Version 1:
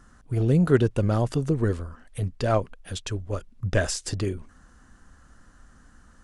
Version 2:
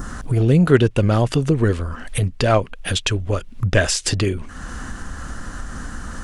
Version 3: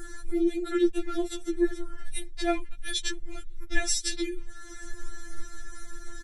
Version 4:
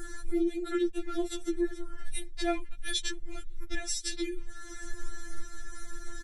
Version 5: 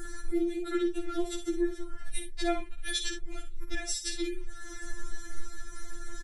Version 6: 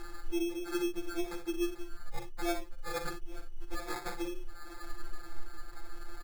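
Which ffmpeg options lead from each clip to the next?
-filter_complex "[0:a]asplit=2[a][b];[b]acompressor=threshold=-32dB:ratio=6,volume=1dB[c];[a][c]amix=inputs=2:normalize=0,adynamicequalizer=threshold=0.00562:dfrequency=2700:dqfactor=1.1:tfrequency=2700:tqfactor=1.1:attack=5:release=100:ratio=0.375:range=3.5:mode=boostabove:tftype=bell,acompressor=mode=upward:threshold=-21dB:ratio=2.5,volume=4dB"
-af "equalizer=f=940:w=0.45:g=-7.5,aecho=1:1:2.4:0.7,afftfilt=real='re*4*eq(mod(b,16),0)':imag='im*4*eq(mod(b,16),0)':win_size=2048:overlap=0.75,volume=-5.5dB"
-af "alimiter=limit=-20.5dB:level=0:latency=1:release=489"
-af "aecho=1:1:55|77:0.376|0.141"
-af "acrusher=samples=15:mix=1:aa=0.000001,volume=-4dB"

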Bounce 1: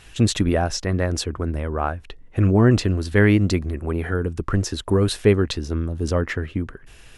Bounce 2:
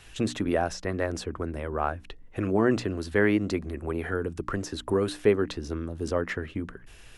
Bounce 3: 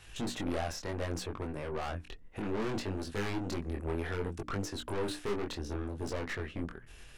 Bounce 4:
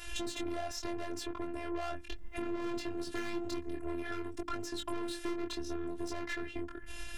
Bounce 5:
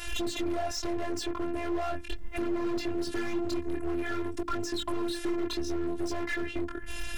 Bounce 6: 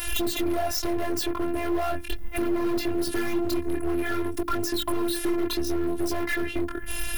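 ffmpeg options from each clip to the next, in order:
-filter_complex "[0:a]bandreject=f=60:t=h:w=6,bandreject=f=120:t=h:w=6,bandreject=f=180:t=h:w=6,bandreject=f=240:t=h:w=6,bandreject=f=300:t=h:w=6,acrossover=split=220|2000[a][b][c];[a]acompressor=threshold=-32dB:ratio=6[d];[c]alimiter=level_in=1dB:limit=-24dB:level=0:latency=1:release=180,volume=-1dB[e];[d][b][e]amix=inputs=3:normalize=0,volume=-3.5dB"
-af "aeval=exprs='(tanh(35.5*val(0)+0.55)-tanh(0.55))/35.5':c=same,flanger=delay=20:depth=4.8:speed=0.65,volume=2.5dB"
-af "acompressor=threshold=-45dB:ratio=5,afftfilt=real='hypot(re,im)*cos(PI*b)':imag='0':win_size=512:overlap=0.75,volume=13dB"
-af "asoftclip=type=hard:threshold=-30.5dB,volume=7.5dB"
-af "aexciter=amount=5.8:drive=4.2:freq=10k,volume=5dB"

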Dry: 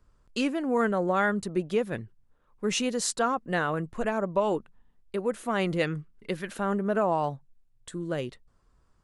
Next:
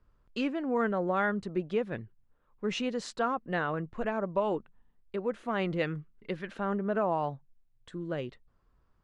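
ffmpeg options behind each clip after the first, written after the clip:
-af "lowpass=3.6k,volume=-3.5dB"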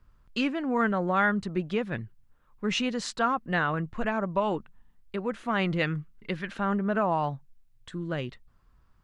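-af "equalizer=f=460:t=o:w=1.5:g=-7.5,volume=7dB"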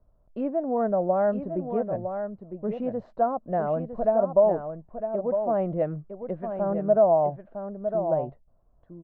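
-af "lowpass=f=640:t=q:w=6.6,aecho=1:1:957:0.398,volume=-3.5dB"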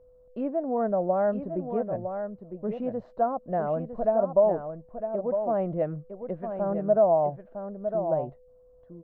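-af "aeval=exprs='val(0)+0.00224*sin(2*PI*500*n/s)':c=same,volume=-1.5dB"

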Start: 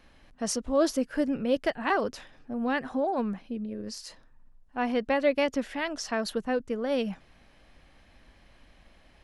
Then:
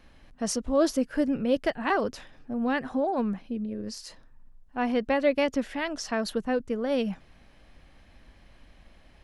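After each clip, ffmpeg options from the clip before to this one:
-af "lowshelf=f=270:g=4"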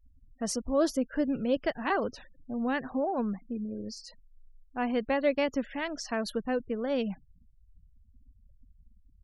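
-af "afftfilt=real='re*gte(hypot(re,im),0.00708)':imag='im*gte(hypot(re,im),0.00708)':win_size=1024:overlap=0.75,volume=-3dB"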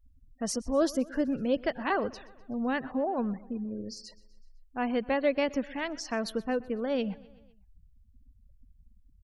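-af "aecho=1:1:126|252|378|504:0.0841|0.0488|0.0283|0.0164"

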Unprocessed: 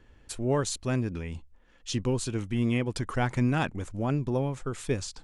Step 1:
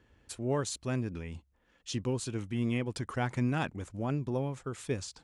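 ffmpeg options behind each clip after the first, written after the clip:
-af "highpass=56,volume=-4.5dB"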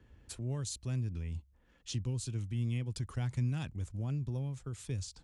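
-filter_complex "[0:a]lowshelf=f=220:g=10,acrossover=split=130|3000[a][b][c];[b]acompressor=threshold=-50dB:ratio=2[d];[a][d][c]amix=inputs=3:normalize=0,volume=-2.5dB"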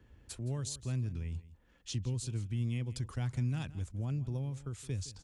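-af "aecho=1:1:166:0.141"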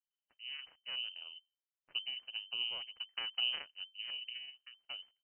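-af "aeval=exprs='0.0596*(cos(1*acos(clip(val(0)/0.0596,-1,1)))-cos(1*PI/2))+0.0188*(cos(3*acos(clip(val(0)/0.0596,-1,1)))-cos(3*PI/2))+0.000422*(cos(4*acos(clip(val(0)/0.0596,-1,1)))-cos(4*PI/2))+0.000422*(cos(7*acos(clip(val(0)/0.0596,-1,1)))-cos(7*PI/2))':c=same,lowpass=f=2.6k:t=q:w=0.5098,lowpass=f=2.6k:t=q:w=0.6013,lowpass=f=2.6k:t=q:w=0.9,lowpass=f=2.6k:t=q:w=2.563,afreqshift=-3100,volume=1dB"

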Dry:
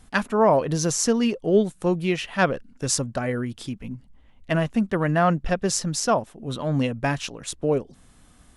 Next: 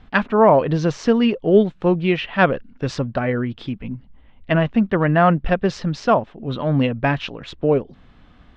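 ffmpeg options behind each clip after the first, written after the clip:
-af "lowpass=f=3.6k:w=0.5412,lowpass=f=3.6k:w=1.3066,volume=5dB"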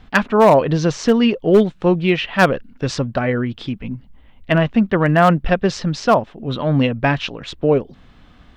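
-af "volume=6.5dB,asoftclip=hard,volume=-6.5dB,highshelf=f=5.5k:g=10,volume=2dB"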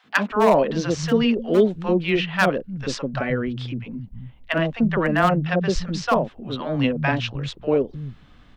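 -filter_complex "[0:a]acrossover=split=160|700[a][b][c];[b]adelay=40[d];[a]adelay=310[e];[e][d][c]amix=inputs=3:normalize=0,volume=-3dB"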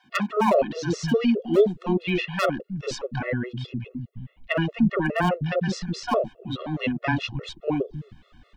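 -af "afftfilt=real='re*gt(sin(2*PI*4.8*pts/sr)*(1-2*mod(floor(b*sr/1024/360),2)),0)':imag='im*gt(sin(2*PI*4.8*pts/sr)*(1-2*mod(floor(b*sr/1024/360),2)),0)':win_size=1024:overlap=0.75"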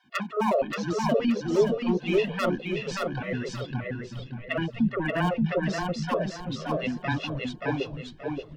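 -filter_complex "[0:a]asplit=2[a][b];[b]aecho=0:1:578|1156|1734|2312:0.708|0.212|0.0637|0.0191[c];[a][c]amix=inputs=2:normalize=0,flanger=delay=0.6:depth=5.5:regen=-78:speed=0.82:shape=sinusoidal"

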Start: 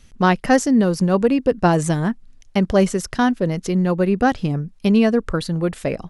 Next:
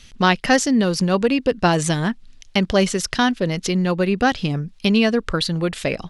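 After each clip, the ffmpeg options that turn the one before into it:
-filter_complex "[0:a]equalizer=f=3.6k:t=o:w=2:g=11.5,asplit=2[a][b];[b]acompressor=threshold=-23dB:ratio=6,volume=-2dB[c];[a][c]amix=inputs=2:normalize=0,volume=-4dB"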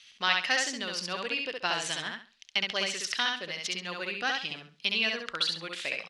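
-filter_complex "[0:a]bandpass=f=3.1k:t=q:w=1:csg=0,asplit=2[a][b];[b]aecho=0:1:67|134|201|268:0.708|0.177|0.0442|0.0111[c];[a][c]amix=inputs=2:normalize=0,volume=-4dB"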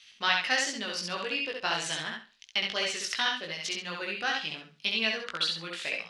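-af "flanger=delay=17.5:depth=2.1:speed=2.8,volume=3dB"

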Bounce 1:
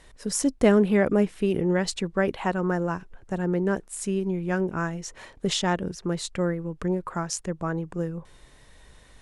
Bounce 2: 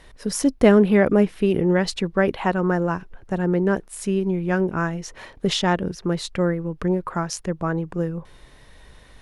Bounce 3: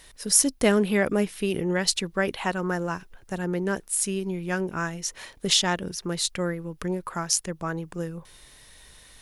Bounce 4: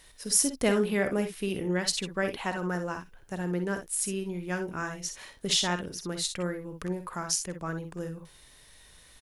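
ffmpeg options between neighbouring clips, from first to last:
-af "equalizer=f=7.7k:t=o:w=0.66:g=-8,volume=4.5dB"
-af "crystalizer=i=6:c=0,volume=-7.5dB"
-af "aecho=1:1:50|62:0.282|0.316,volume=-5dB"

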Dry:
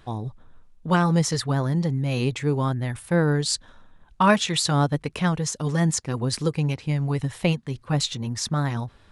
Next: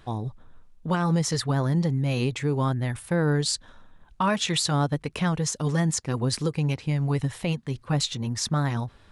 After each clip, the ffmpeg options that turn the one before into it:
-af "alimiter=limit=-15dB:level=0:latency=1:release=140"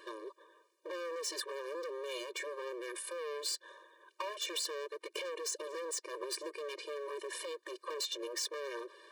-filter_complex "[0:a]acrossover=split=210[a][b];[b]acompressor=threshold=-34dB:ratio=5[c];[a][c]amix=inputs=2:normalize=0,volume=34.5dB,asoftclip=hard,volume=-34.5dB,afftfilt=real='re*eq(mod(floor(b*sr/1024/310),2),1)':imag='im*eq(mod(floor(b*sr/1024/310),2),1)':win_size=1024:overlap=0.75,volume=5dB"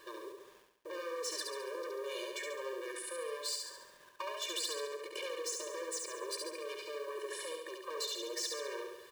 -filter_complex "[0:a]acrusher=bits=9:mix=0:aa=0.000001,asplit=2[a][b];[b]aecho=0:1:70|140|210|280|350|420|490:0.668|0.348|0.181|0.094|0.0489|0.0254|0.0132[c];[a][c]amix=inputs=2:normalize=0,volume=-2dB"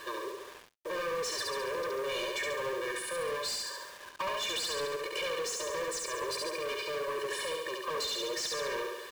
-filter_complex "[0:a]asplit=2[a][b];[b]highpass=f=720:p=1,volume=19dB,asoftclip=type=tanh:threshold=-24.5dB[c];[a][c]amix=inputs=2:normalize=0,lowpass=f=4k:p=1,volume=-6dB,acrusher=bits=7:mix=0:aa=0.5"

